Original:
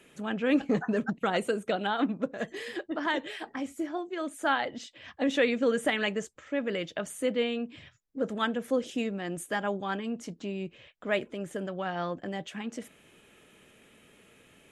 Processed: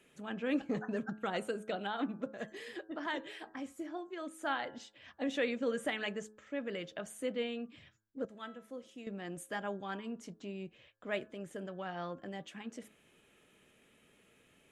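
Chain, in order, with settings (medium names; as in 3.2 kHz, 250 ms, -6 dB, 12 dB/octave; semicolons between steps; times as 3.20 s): de-hum 107.1 Hz, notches 16; 8.25–9.07 s: feedback comb 330 Hz, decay 0.55 s, mix 70%; trim -8 dB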